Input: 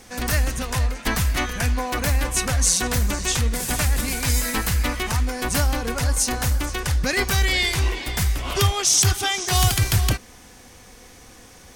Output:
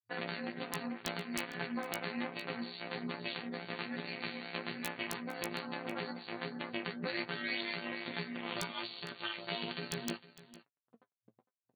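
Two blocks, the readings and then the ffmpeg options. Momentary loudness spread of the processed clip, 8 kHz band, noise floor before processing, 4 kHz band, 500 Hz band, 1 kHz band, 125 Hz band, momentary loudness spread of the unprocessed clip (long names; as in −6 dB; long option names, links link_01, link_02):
4 LU, −30.0 dB, −47 dBFS, −16.5 dB, −12.5 dB, −15.5 dB, −27.0 dB, 6 LU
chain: -filter_complex "[0:a]afftfilt=real='re*gte(hypot(re,im),0.0224)':imag='im*gte(hypot(re,im),0.0224)':win_size=1024:overlap=0.75,afftfilt=real='hypot(re,im)*cos(PI*b)':imag='0':win_size=1024:overlap=0.75,bandreject=frequency=140.3:width_type=h:width=4,bandreject=frequency=280.6:width_type=h:width=4,bandreject=frequency=420.9:width_type=h:width=4,bandreject=frequency=561.2:width_type=h:width=4,bandreject=frequency=701.5:width_type=h:width=4,bandreject=frequency=841.8:width_type=h:width=4,bandreject=frequency=982.1:width_type=h:width=4,bandreject=frequency=1122.4:width_type=h:width=4,bandreject=frequency=1262.7:width_type=h:width=4,bandreject=frequency=1403:width_type=h:width=4,bandreject=frequency=1543.3:width_type=h:width=4,bandreject=frequency=1683.6:width_type=h:width=4,bandreject=frequency=1823.9:width_type=h:width=4,acompressor=threshold=-42dB:ratio=3,tremolo=f=240:d=0.788,aeval=exprs='sgn(val(0))*max(abs(val(0))-0.00266,0)':channel_layout=same,afftfilt=real='re*between(b*sr/4096,110,4600)':imag='im*between(b*sr/4096,110,4600)':win_size=4096:overlap=0.75,flanger=delay=6.9:depth=3.4:regen=41:speed=1.2:shape=sinusoidal,aeval=exprs='(mod(37.6*val(0)+1,2)-1)/37.6':channel_layout=same,asplit=2[link_01][link_02];[link_02]adelay=17,volume=-12dB[link_03];[link_01][link_03]amix=inputs=2:normalize=0,asplit=2[link_04][link_05];[link_05]aecho=0:1:456:0.133[link_06];[link_04][link_06]amix=inputs=2:normalize=0,volume=13dB"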